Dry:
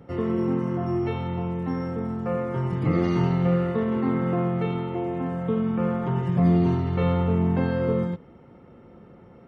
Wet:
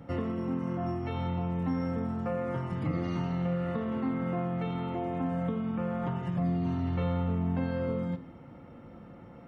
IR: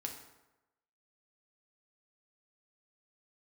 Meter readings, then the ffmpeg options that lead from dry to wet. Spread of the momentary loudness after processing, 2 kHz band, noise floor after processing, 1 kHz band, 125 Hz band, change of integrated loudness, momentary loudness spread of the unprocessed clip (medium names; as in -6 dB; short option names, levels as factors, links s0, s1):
10 LU, -6.5 dB, -49 dBFS, -5.5 dB, -7.0 dB, -7.0 dB, 7 LU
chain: -filter_complex "[0:a]acompressor=threshold=0.0398:ratio=6,equalizer=f=410:t=o:w=0.2:g=-14,asplit=2[s0][s1];[1:a]atrim=start_sample=2205[s2];[s1][s2]afir=irnorm=-1:irlink=0,volume=0.794[s3];[s0][s3]amix=inputs=2:normalize=0,volume=0.708"